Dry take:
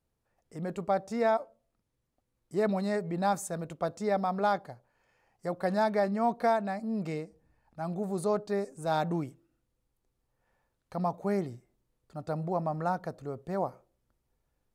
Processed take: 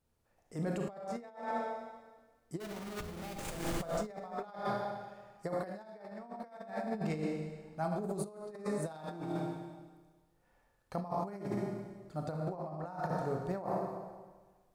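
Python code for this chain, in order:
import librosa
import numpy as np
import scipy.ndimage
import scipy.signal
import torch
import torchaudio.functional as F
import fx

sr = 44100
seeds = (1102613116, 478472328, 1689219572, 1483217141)

y = fx.schmitt(x, sr, flips_db=-35.0, at=(2.6, 3.74))
y = fx.rev_schroeder(y, sr, rt60_s=1.4, comb_ms=26, drr_db=0.5)
y = fx.over_compress(y, sr, threshold_db=-33.0, ratio=-0.5)
y = F.gain(torch.from_numpy(y), -4.5).numpy()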